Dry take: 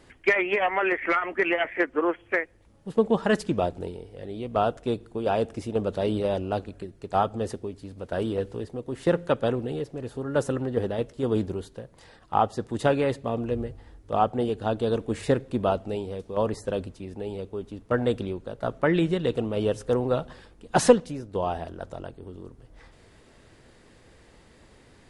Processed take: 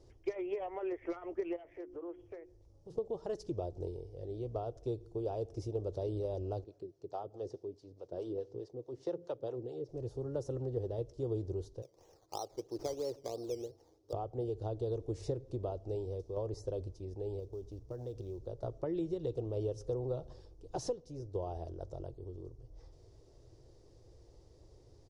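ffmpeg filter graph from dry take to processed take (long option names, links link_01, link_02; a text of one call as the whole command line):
ffmpeg -i in.wav -filter_complex "[0:a]asettb=1/sr,asplit=3[link_01][link_02][link_03];[link_01]atrim=end=1.564[link_04];[link_02]atrim=start=1.56:end=2.98,asetpts=PTS-STARTPTS,afade=type=in:duration=0.004:curve=qsin,afade=type=out:start_time=1.416:duration=0.004:curve=qsin,bandreject=frequency=60:width_type=h:width=6,bandreject=frequency=120:width_type=h:width=6,bandreject=frequency=180:width_type=h:width=6,bandreject=frequency=240:width_type=h:width=6,bandreject=frequency=300:width_type=h:width=6,bandreject=frequency=360:width_type=h:width=6,acompressor=threshold=-36dB:ratio=4:attack=3.2:release=140:knee=1:detection=peak[link_05];[link_03]atrim=start=2.976[link_06];[link_04][link_05]acrossfade=duration=0.004:curve1=hsin:curve2=qsin[link_07];[link_07][link_06]acrossfade=duration=0.004:curve1=qsin:curve2=hsin,asettb=1/sr,asplit=3[link_08][link_09][link_10];[link_08]atrim=end=6.644[link_11];[link_09]atrim=start=6.64:end=9.89,asetpts=PTS-STARTPTS,afade=type=in:duration=0.004:curve=qsin,afade=type=out:start_time=3.246:duration=0.004:curve=qsin,acrossover=split=510[link_12][link_13];[link_12]aeval=exprs='val(0)*(1-0.7/2+0.7/2*cos(2*PI*4.7*n/s))':channel_layout=same[link_14];[link_13]aeval=exprs='val(0)*(1-0.7/2-0.7/2*cos(2*PI*4.7*n/s))':channel_layout=same[link_15];[link_14][link_15]amix=inputs=2:normalize=0,highpass=180,lowpass=6600[link_16];[link_10]atrim=start=9.886[link_17];[link_11][link_16]acrossfade=duration=0.004:curve1=hsin:curve2=qsin[link_18];[link_18][link_17]acrossfade=duration=0.004:curve1=qsin:curve2=hsin,asettb=1/sr,asplit=3[link_19][link_20][link_21];[link_19]atrim=end=11.824[link_22];[link_20]atrim=start=11.82:end=14.13,asetpts=PTS-STARTPTS,afade=type=in:duration=0.004:curve=qsin,afade=type=out:start_time=2.306:duration=0.004:curve=qsin,highpass=290,lowpass=5200,acrusher=samples=13:mix=1:aa=0.000001:lfo=1:lforange=7.8:lforate=3[link_23];[link_21]atrim=start=14.126[link_24];[link_22][link_23]acrossfade=duration=0.004:curve1=hsin:curve2=qsin[link_25];[link_25][link_24]acrossfade=duration=0.004:curve1=qsin:curve2=hsin,asettb=1/sr,asplit=3[link_26][link_27][link_28];[link_26]atrim=end=17.394[link_29];[link_27]atrim=start=17.39:end=18.47,asetpts=PTS-STARTPTS,afade=type=in:duration=0.004:curve=qsin,afade=type=out:start_time=1.076:duration=0.004:curve=qsin,aeval=exprs='val(0)+0.002*(sin(2*PI*60*n/s)+sin(2*PI*2*60*n/s)/2+sin(2*PI*3*60*n/s)/3+sin(2*PI*4*60*n/s)/4+sin(2*PI*5*60*n/s)/5)':channel_layout=same,acompressor=threshold=-34dB:ratio=4:attack=3.2:release=140:knee=1:detection=peak,acrusher=bits=7:mode=log:mix=0:aa=0.000001[link_30];[link_28]atrim=start=18.466[link_31];[link_29][link_30]acrossfade=duration=0.004:curve1=hsin:curve2=qsin[link_32];[link_32][link_31]acrossfade=duration=0.004:curve1=qsin:curve2=hsin,acompressor=threshold=-27dB:ratio=4,firequalizer=gain_entry='entry(120,0);entry(210,-20);entry(340,-2);entry(1600,-25);entry(2700,-21);entry(5600,-2);entry(8100,-16)':delay=0.05:min_phase=1,volume=-1.5dB" out.wav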